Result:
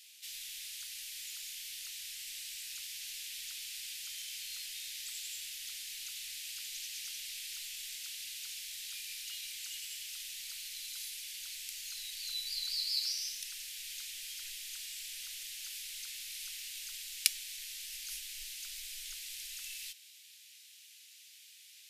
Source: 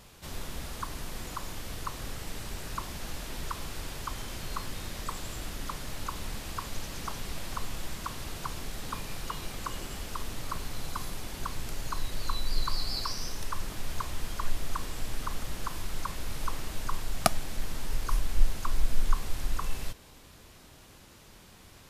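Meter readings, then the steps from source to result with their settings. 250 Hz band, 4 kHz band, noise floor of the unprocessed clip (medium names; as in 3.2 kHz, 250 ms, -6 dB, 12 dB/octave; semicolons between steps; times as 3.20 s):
under -40 dB, +2.0 dB, -54 dBFS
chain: inverse Chebyshev high-pass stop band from 1.2 kHz, stop band 40 dB; trim +2 dB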